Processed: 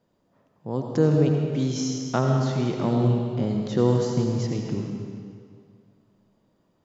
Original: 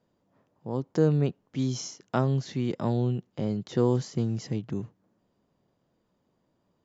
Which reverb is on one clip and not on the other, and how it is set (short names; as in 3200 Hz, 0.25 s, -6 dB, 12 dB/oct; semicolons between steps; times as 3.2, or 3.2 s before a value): digital reverb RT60 2.1 s, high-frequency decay 0.9×, pre-delay 45 ms, DRR 1.5 dB; gain +2.5 dB